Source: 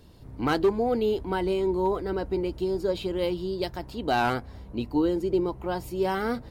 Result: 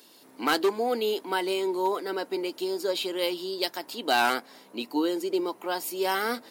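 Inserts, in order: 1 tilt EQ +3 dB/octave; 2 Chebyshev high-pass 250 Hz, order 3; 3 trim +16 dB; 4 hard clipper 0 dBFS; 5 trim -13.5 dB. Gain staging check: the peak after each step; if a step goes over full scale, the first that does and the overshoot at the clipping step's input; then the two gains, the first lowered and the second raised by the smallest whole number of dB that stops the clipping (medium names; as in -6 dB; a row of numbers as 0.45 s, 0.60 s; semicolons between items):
-9.5 dBFS, -10.0 dBFS, +6.0 dBFS, 0.0 dBFS, -13.5 dBFS; step 3, 6.0 dB; step 3 +10 dB, step 5 -7.5 dB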